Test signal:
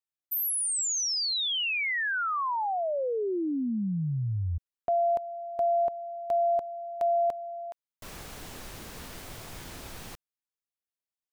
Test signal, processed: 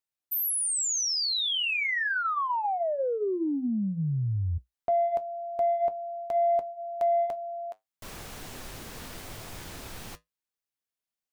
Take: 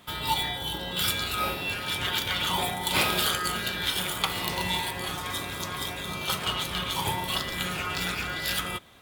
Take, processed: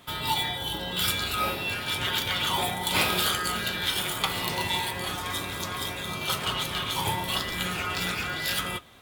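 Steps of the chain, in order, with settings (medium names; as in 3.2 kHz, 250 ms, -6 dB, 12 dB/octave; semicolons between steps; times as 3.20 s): in parallel at -8 dB: saturation -23 dBFS; on the sum: flange 0.46 Hz, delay 7.4 ms, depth 3 ms, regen -66%; trim +2.5 dB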